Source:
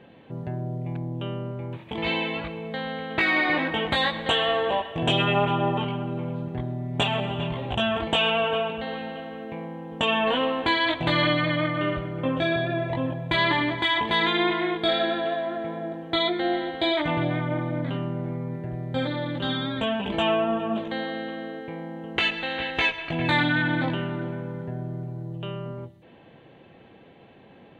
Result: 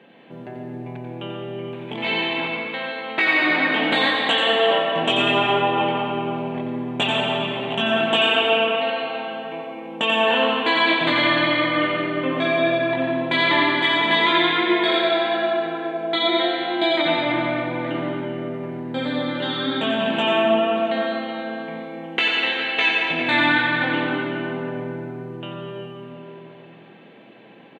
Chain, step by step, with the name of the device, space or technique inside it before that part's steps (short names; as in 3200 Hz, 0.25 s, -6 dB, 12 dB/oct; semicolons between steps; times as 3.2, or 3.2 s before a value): PA in a hall (HPF 180 Hz 24 dB/oct; bell 2400 Hz +4 dB 1.2 oct; echo 89 ms -7 dB; reverb RT60 3.1 s, pre-delay 82 ms, DRR -0.5 dB)